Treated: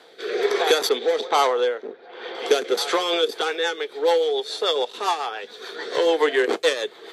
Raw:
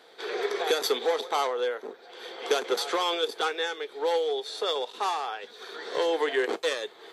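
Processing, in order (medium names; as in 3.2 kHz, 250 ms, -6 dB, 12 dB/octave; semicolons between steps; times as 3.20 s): rotary cabinet horn 1.2 Hz, later 7 Hz, at 2.60 s; 0.89–2.35 s: level-controlled noise filter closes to 2 kHz, open at -23.5 dBFS; trim +8.5 dB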